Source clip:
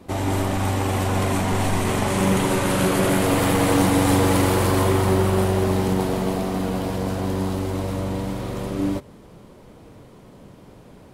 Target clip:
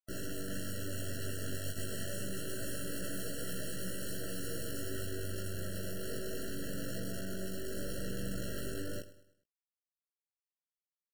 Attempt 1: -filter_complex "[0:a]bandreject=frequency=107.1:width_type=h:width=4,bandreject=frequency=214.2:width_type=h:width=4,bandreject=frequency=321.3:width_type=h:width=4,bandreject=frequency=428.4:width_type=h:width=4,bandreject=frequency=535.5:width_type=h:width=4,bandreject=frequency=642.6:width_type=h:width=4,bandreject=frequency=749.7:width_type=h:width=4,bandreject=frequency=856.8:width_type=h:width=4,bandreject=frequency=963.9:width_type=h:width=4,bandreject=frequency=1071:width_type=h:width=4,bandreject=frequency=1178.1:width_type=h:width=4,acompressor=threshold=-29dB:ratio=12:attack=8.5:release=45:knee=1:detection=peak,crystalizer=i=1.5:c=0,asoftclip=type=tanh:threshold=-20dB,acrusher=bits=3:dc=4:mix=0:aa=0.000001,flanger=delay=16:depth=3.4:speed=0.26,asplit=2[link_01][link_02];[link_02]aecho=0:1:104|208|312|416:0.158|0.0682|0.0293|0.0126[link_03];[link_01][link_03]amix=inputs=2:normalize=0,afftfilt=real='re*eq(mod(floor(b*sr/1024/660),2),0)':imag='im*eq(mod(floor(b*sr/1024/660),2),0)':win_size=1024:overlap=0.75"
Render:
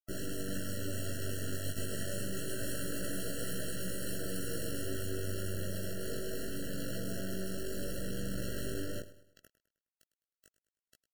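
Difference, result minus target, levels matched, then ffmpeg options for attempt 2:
soft clipping: distortion −13 dB
-filter_complex "[0:a]bandreject=frequency=107.1:width_type=h:width=4,bandreject=frequency=214.2:width_type=h:width=4,bandreject=frequency=321.3:width_type=h:width=4,bandreject=frequency=428.4:width_type=h:width=4,bandreject=frequency=535.5:width_type=h:width=4,bandreject=frequency=642.6:width_type=h:width=4,bandreject=frequency=749.7:width_type=h:width=4,bandreject=frequency=856.8:width_type=h:width=4,bandreject=frequency=963.9:width_type=h:width=4,bandreject=frequency=1071:width_type=h:width=4,bandreject=frequency=1178.1:width_type=h:width=4,acompressor=threshold=-29dB:ratio=12:attack=8.5:release=45:knee=1:detection=peak,crystalizer=i=1.5:c=0,asoftclip=type=tanh:threshold=-31dB,acrusher=bits=3:dc=4:mix=0:aa=0.000001,flanger=delay=16:depth=3.4:speed=0.26,asplit=2[link_01][link_02];[link_02]aecho=0:1:104|208|312|416:0.158|0.0682|0.0293|0.0126[link_03];[link_01][link_03]amix=inputs=2:normalize=0,afftfilt=real='re*eq(mod(floor(b*sr/1024/660),2),0)':imag='im*eq(mod(floor(b*sr/1024/660),2),0)':win_size=1024:overlap=0.75"

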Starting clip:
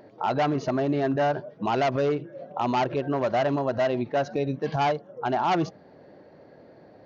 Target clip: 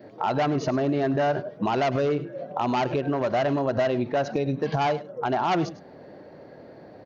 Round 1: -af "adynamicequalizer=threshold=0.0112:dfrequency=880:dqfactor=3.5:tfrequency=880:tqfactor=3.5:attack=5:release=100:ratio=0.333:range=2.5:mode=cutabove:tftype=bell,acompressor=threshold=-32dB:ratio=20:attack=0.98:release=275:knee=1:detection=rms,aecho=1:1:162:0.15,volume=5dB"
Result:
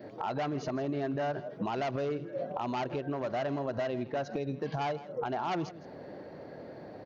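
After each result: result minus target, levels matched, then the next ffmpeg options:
echo 60 ms late; downward compressor: peak gain reduction +9 dB
-af "adynamicequalizer=threshold=0.0112:dfrequency=880:dqfactor=3.5:tfrequency=880:tqfactor=3.5:attack=5:release=100:ratio=0.333:range=2.5:mode=cutabove:tftype=bell,acompressor=threshold=-32dB:ratio=20:attack=0.98:release=275:knee=1:detection=rms,aecho=1:1:102:0.15,volume=5dB"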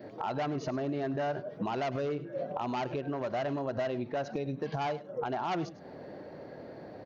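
downward compressor: peak gain reduction +9 dB
-af "adynamicequalizer=threshold=0.0112:dfrequency=880:dqfactor=3.5:tfrequency=880:tqfactor=3.5:attack=5:release=100:ratio=0.333:range=2.5:mode=cutabove:tftype=bell,acompressor=threshold=-22.5dB:ratio=20:attack=0.98:release=275:knee=1:detection=rms,aecho=1:1:102:0.15,volume=5dB"

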